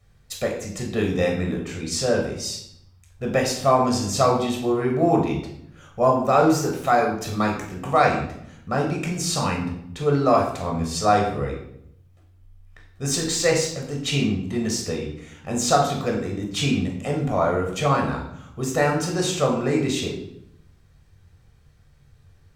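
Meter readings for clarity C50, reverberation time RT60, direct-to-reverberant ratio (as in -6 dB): 5.5 dB, 0.75 s, 0.0 dB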